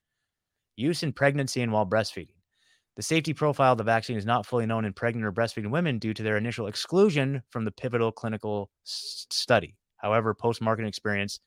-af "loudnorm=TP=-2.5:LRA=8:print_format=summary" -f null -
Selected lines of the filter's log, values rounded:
Input Integrated:    -27.4 LUFS
Input True Peak:      -7.7 dBTP
Input LRA:             1.9 LU
Input Threshold:     -37.7 LUFS